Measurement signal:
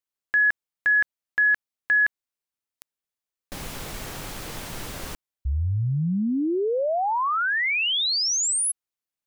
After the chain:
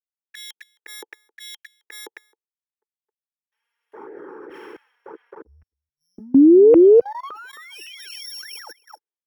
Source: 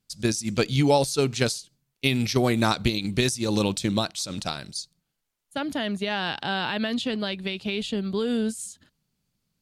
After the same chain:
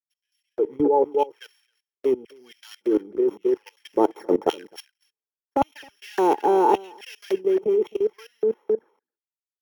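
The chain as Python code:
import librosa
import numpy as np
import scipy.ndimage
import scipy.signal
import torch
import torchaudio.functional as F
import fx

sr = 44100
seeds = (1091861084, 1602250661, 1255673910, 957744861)

p1 = np.r_[np.sort(x[:len(x) // 8 * 8].reshape(-1, 8), axis=1).ravel(), x[len(x) // 8 * 8:]]
p2 = fx.small_body(p1, sr, hz=(450.0, 860.0, 3200.0), ring_ms=30, db=17)
p3 = fx.filter_lfo_highpass(p2, sr, shape='square', hz=0.89, low_hz=350.0, high_hz=2800.0, q=4.2)
p4 = fx.high_shelf_res(p3, sr, hz=2400.0, db=-12.5, q=3.0)
p5 = fx.rider(p4, sr, range_db=5, speed_s=0.5)
p6 = fx.env_flanger(p5, sr, rest_ms=5.3, full_db=-16.0)
p7 = fx.highpass(p6, sr, hz=78.0, slope=6)
p8 = p7 + fx.echo_single(p7, sr, ms=266, db=-11.0, dry=0)
p9 = fx.level_steps(p8, sr, step_db=20)
p10 = fx.band_widen(p9, sr, depth_pct=100)
y = p10 * 10.0 ** (1.5 / 20.0)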